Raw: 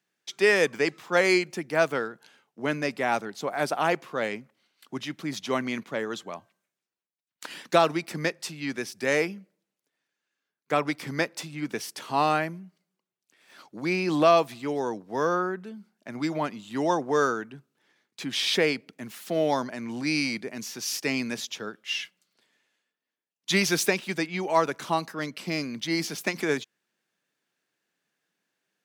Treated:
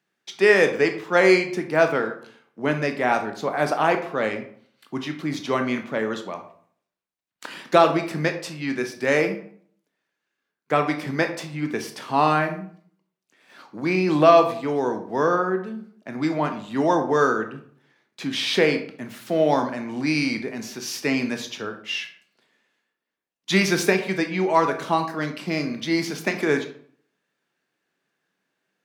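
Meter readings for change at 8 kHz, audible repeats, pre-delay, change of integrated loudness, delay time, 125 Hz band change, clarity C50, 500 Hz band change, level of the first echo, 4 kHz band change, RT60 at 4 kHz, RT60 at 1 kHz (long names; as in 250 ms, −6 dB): −1.5 dB, no echo audible, 16 ms, +4.5 dB, no echo audible, +6.0 dB, 9.5 dB, +5.5 dB, no echo audible, +1.0 dB, 0.35 s, 0.55 s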